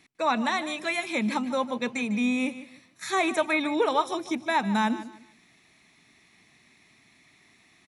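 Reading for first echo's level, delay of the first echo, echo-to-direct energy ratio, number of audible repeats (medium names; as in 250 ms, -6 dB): -14.5 dB, 150 ms, -14.0 dB, 2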